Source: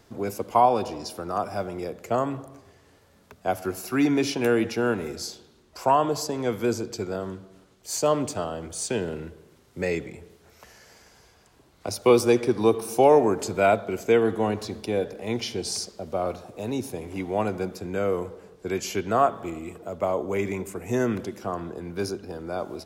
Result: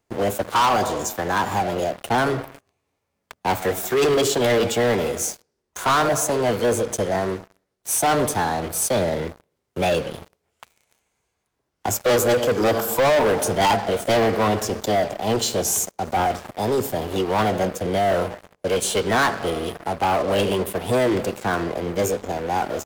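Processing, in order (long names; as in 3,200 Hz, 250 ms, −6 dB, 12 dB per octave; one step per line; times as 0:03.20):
formants moved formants +5 semitones
leveller curve on the samples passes 5
level −8.5 dB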